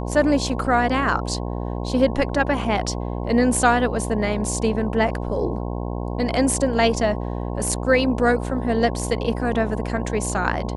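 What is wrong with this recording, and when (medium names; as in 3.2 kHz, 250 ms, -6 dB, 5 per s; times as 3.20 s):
buzz 60 Hz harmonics 18 -27 dBFS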